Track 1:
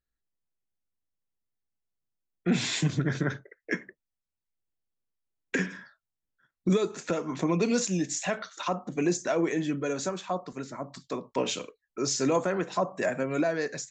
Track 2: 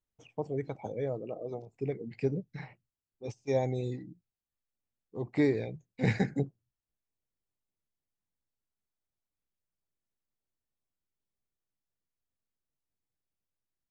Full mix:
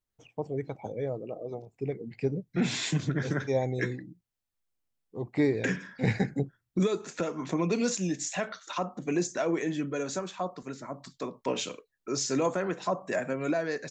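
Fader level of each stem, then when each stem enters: -2.0, +1.0 dB; 0.10, 0.00 s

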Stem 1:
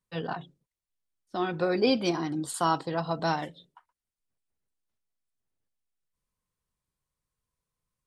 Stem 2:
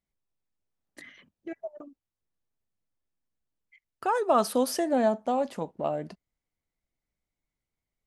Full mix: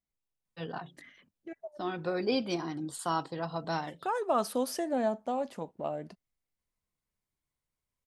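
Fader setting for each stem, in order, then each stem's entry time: -5.5, -5.5 dB; 0.45, 0.00 s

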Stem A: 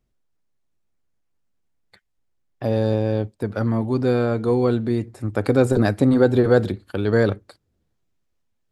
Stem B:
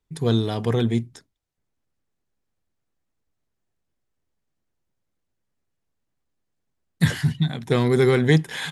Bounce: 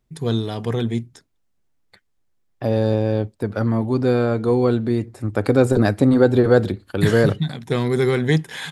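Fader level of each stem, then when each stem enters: +1.5, -1.0 dB; 0.00, 0.00 s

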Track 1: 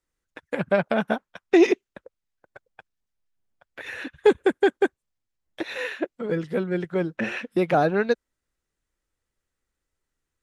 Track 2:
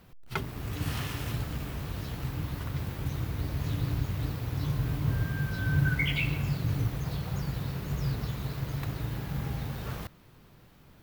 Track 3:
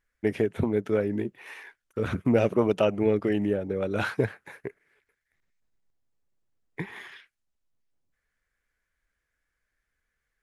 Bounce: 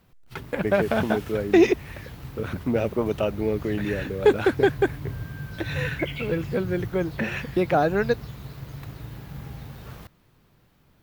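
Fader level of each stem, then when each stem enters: -0.5, -4.5, -2.0 dB; 0.00, 0.00, 0.40 s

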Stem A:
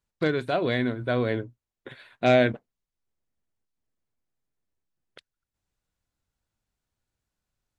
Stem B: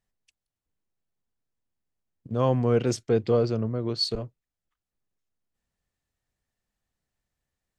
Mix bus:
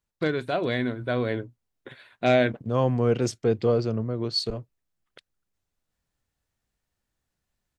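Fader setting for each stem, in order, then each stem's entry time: -1.0, 0.0 dB; 0.00, 0.35 s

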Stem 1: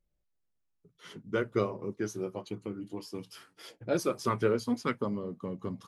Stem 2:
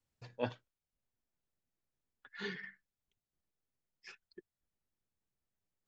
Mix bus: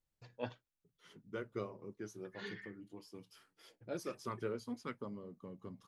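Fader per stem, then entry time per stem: -12.5, -5.0 dB; 0.00, 0.00 s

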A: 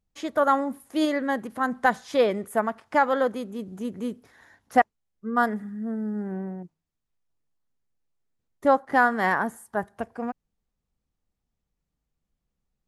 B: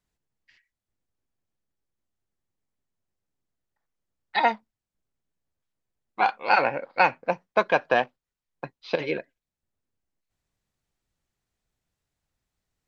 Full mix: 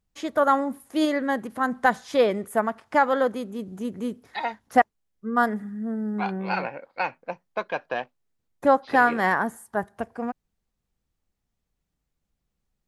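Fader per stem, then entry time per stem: +1.0, -7.5 dB; 0.00, 0.00 s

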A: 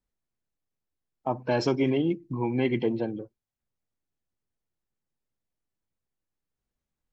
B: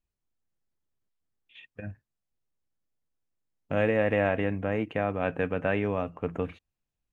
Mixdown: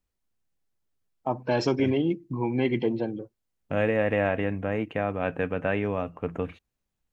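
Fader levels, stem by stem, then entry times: +0.5, +0.5 dB; 0.00, 0.00 s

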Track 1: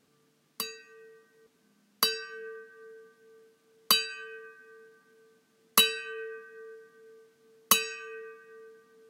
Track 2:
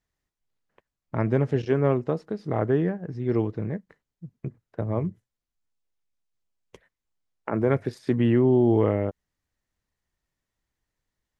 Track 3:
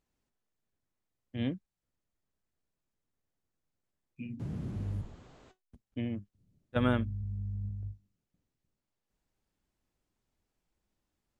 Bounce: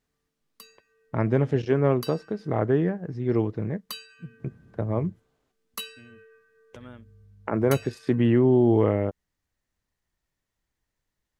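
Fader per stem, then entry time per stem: -14.0, +0.5, -17.0 dB; 0.00, 0.00, 0.00 s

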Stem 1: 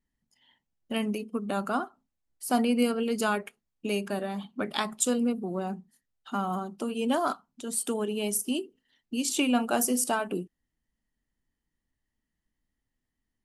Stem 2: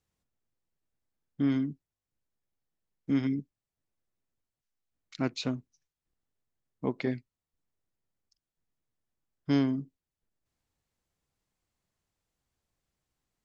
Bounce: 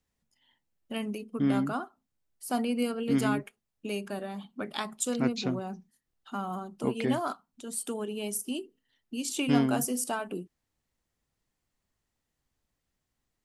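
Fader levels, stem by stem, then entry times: -4.5, +0.5 dB; 0.00, 0.00 s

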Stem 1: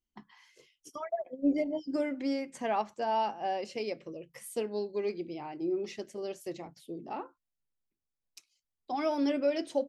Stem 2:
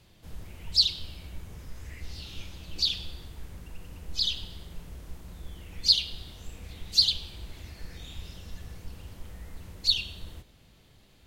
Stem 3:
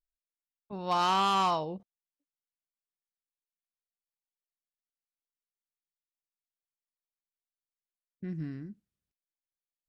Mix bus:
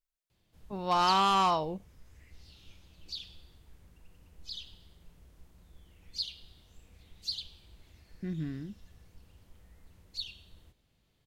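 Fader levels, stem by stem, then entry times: off, -14.5 dB, +1.0 dB; off, 0.30 s, 0.00 s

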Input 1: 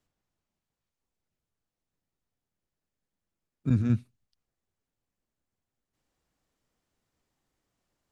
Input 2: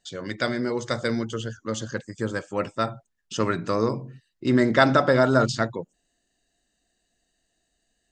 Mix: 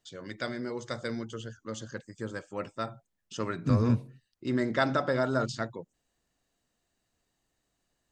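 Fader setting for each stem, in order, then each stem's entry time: -0.5, -9.0 dB; 0.00, 0.00 s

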